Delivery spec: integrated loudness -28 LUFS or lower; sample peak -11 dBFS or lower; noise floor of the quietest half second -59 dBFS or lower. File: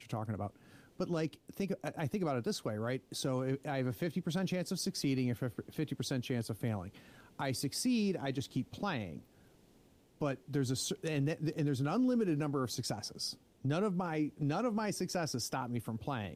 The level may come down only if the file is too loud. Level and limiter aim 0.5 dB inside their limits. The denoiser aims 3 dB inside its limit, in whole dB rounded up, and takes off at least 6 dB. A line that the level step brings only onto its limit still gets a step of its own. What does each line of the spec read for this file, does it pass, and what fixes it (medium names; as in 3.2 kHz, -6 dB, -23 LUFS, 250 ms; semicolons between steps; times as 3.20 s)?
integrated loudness -36.5 LUFS: pass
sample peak -22.5 dBFS: pass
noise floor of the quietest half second -65 dBFS: pass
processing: none needed